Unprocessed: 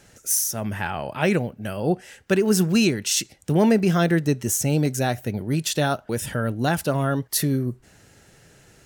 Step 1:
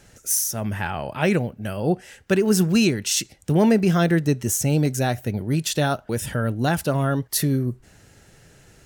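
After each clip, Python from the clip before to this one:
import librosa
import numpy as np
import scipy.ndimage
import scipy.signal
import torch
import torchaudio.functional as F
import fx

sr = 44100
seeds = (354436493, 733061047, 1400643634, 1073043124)

y = fx.low_shelf(x, sr, hz=82.0, db=7.0)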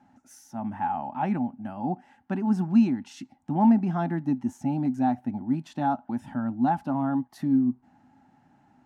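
y = fx.double_bandpass(x, sr, hz=460.0, octaves=1.7)
y = y * 10.0 ** (6.0 / 20.0)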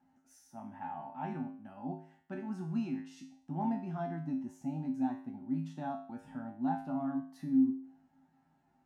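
y = fx.comb_fb(x, sr, f0_hz=53.0, decay_s=0.5, harmonics='odd', damping=0.0, mix_pct=90)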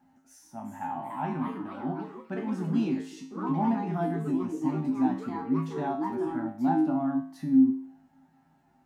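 y = fx.echo_pitch(x, sr, ms=421, semitones=3, count=3, db_per_echo=-6.0)
y = y * 10.0 ** (7.0 / 20.0)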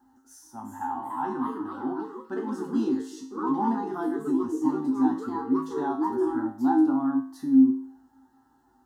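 y = fx.fixed_phaser(x, sr, hz=630.0, stages=6)
y = y * 10.0 ** (5.5 / 20.0)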